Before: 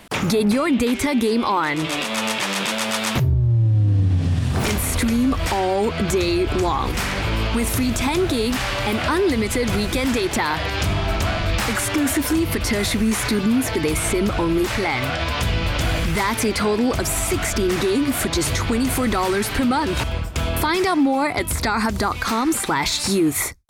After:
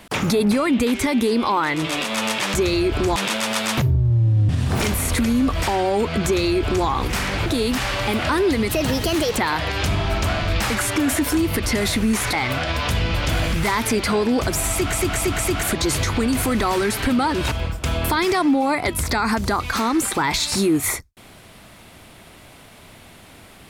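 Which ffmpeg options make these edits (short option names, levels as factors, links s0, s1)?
-filter_complex "[0:a]asplit=12[s0][s1][s2][s3][s4][s5][s6][s7][s8][s9][s10][s11];[s0]atrim=end=2.542[s12];[s1]atrim=start=6.088:end=6.712[s13];[s2]atrim=start=2.538:end=3.872[s14];[s3]atrim=start=4.328:end=7.302[s15];[s4]atrim=start=8.248:end=9.484[s16];[s5]atrim=start=9.48:end=10.35,asetpts=PTS-STARTPTS,asetrate=56448,aresample=44100,atrim=end_sample=29974,asetpts=PTS-STARTPTS[s17];[s6]atrim=start=10.346:end=13.312[s18];[s7]atrim=start=14.848:end=17.462[s19];[s8]atrim=start=17.228:end=17.462[s20];[s9]atrim=start=17.228:end=17.462[s21];[s10]atrim=start=17.228:end=17.462[s22];[s11]atrim=start=18.148[s23];[s12][s13]acrossfade=d=0.004:c1=hsin:c2=hsin[s24];[s24][s14]acrossfade=d=0.004:c1=hsin:c2=hsin[s25];[s25][s15]acrossfade=d=0.004:c1=hsin:c2=hsin[s26];[s26][s16]acrossfade=d=0.004:c1=hsin:c2=hsin[s27];[s27][s17]acrossfade=d=0.004:c1=hsin:c2=hsin[s28];[s28][s18]acrossfade=d=0.004:c1=hsin:c2=hsin[s29];[s29][s19]acrossfade=d=0.004:c1=hsin:c2=hsin[s30];[s30][s20]acrossfade=d=0.004:c1=hsin:c2=hsin[s31];[s31][s21]acrossfade=d=0.004:c1=hsin:c2=hsin[s32];[s32][s22]acrossfade=d=0.004:c1=hsin:c2=hsin[s33];[s33][s23]acrossfade=d=0.004:c1=hsin:c2=hsin"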